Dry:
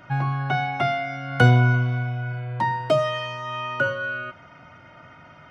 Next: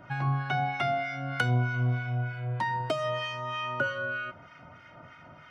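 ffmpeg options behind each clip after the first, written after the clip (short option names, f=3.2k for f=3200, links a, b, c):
-filter_complex "[0:a]acompressor=threshold=-20dB:ratio=6,acrossover=split=1200[a][b];[a]aeval=exprs='val(0)*(1-0.7/2+0.7/2*cos(2*PI*3.2*n/s))':c=same[c];[b]aeval=exprs='val(0)*(1-0.7/2-0.7/2*cos(2*PI*3.2*n/s))':c=same[d];[c][d]amix=inputs=2:normalize=0"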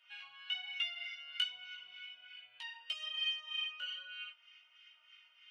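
-af "flanger=delay=17.5:depth=2.5:speed=1.2,highpass=f=2.9k:t=q:w=8.1,volume=-7.5dB"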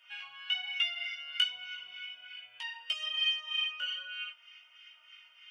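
-af "bandreject=f=4k:w=6,volume=6.5dB"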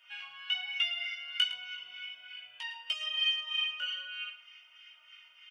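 -af "aecho=1:1:110:0.224"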